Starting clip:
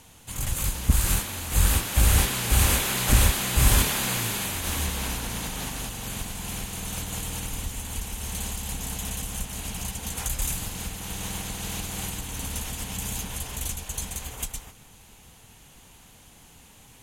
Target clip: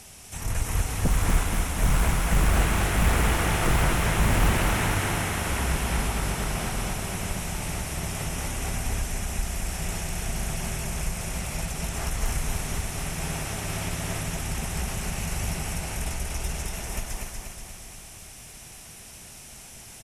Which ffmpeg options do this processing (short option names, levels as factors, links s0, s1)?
-filter_complex "[0:a]aeval=exprs='0.141*(abs(mod(val(0)/0.141+3,4)-2)-1)':c=same,highshelf=f=7400:g=8.5,acrossover=split=2800[s0][s1];[s1]acompressor=threshold=0.01:ratio=4:attack=1:release=60[s2];[s0][s2]amix=inputs=2:normalize=0,asetrate=37485,aresample=44100,asplit=2[s3][s4];[s4]aecho=0:1:240|480|720|960|1200|1440|1680|1920:0.631|0.353|0.198|0.111|0.0621|0.0347|0.0195|0.0109[s5];[s3][s5]amix=inputs=2:normalize=0,volume=1.33"